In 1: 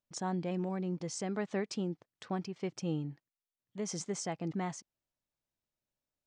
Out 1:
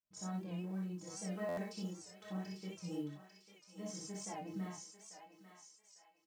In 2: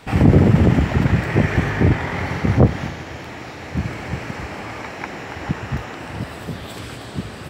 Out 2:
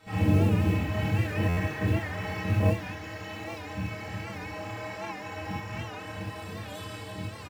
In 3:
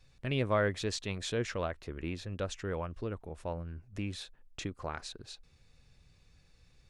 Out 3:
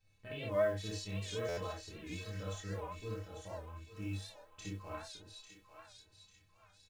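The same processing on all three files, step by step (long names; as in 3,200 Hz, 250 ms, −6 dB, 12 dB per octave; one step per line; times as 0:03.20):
loose part that buzzes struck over −20 dBFS, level −18 dBFS
in parallel at −1 dB: downward compressor 6 to 1, threshold −30 dBFS
on the sum: stiff-string resonator 94 Hz, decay 0.29 s, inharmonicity 0.03
floating-point word with a short mantissa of 4 bits
double-tracking delay 27 ms −5 dB
on a send: feedback echo with a high-pass in the loop 846 ms, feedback 42%, high-pass 910 Hz, level −7.5 dB
on the sum: reverb whose tail is shaped and stops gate 80 ms rising, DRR −3.5 dB
buffer that repeats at 0:01.48, samples 512, times 7
wow of a warped record 78 rpm, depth 100 cents
level −8.5 dB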